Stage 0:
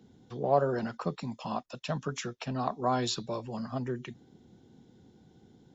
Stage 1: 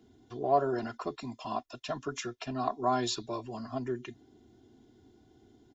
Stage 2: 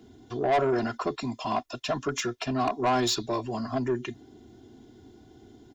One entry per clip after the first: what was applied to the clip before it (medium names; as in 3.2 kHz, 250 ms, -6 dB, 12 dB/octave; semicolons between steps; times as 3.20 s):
comb 2.9 ms, depth 82%; trim -3 dB
saturation -27.5 dBFS, distortion -9 dB; trim +8.5 dB